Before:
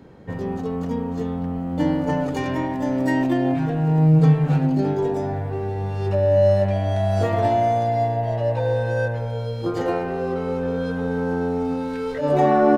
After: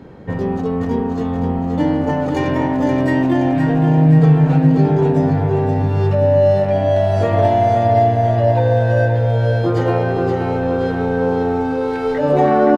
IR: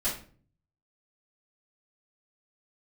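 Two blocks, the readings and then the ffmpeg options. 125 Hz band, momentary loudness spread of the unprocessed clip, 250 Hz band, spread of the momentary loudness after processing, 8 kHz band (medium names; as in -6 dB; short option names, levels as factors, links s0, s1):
+6.5 dB, 10 LU, +5.5 dB, 7 LU, no reading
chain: -filter_complex "[0:a]highshelf=f=5600:g=-8.5,asplit=2[s0][s1];[s1]alimiter=limit=0.126:level=0:latency=1:release=431,volume=1.33[s2];[s0][s2]amix=inputs=2:normalize=0,aecho=1:1:523|1046|1569|2092|2615|3138:0.501|0.261|0.136|0.0705|0.0366|0.0191"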